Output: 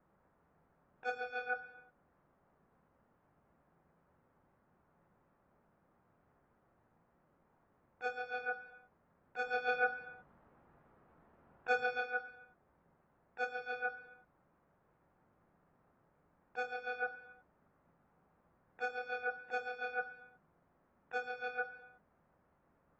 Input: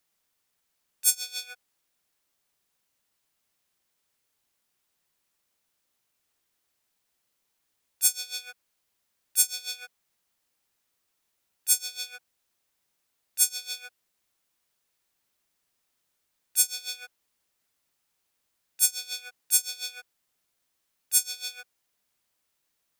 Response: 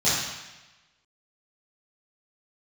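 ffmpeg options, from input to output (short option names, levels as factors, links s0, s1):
-filter_complex "[0:a]lowpass=f=1300:w=0.5412,lowpass=f=1300:w=1.3066,asettb=1/sr,asplit=3[s0][s1][s2];[s0]atrim=end=9.464[s3];[s1]atrim=start=9.46:end=12,asetpts=PTS-STARTPTS,afade=t=in:d=0.004:c=qsin,afade=t=out:st=2.536:d=0.004:c=qsin,acontrast=63[s4];[s2]atrim=start=11.996[s5];[s3][s4]acrossfade=d=0.004:c1=hsin:c2=qsin[s6];[s6][s5]acrossfade=d=0.004:c1=qsin:c2=hsin,asplit=2[s7][s8];[1:a]atrim=start_sample=2205,afade=t=out:st=0.41:d=0.01,atrim=end_sample=18522,lowshelf=f=390:g=10.5[s9];[s8][s9]afir=irnorm=-1:irlink=0,volume=0.0596[s10];[s7][s10]amix=inputs=2:normalize=0,volume=4.47" -ar 44100 -c:a aac -b:a 24k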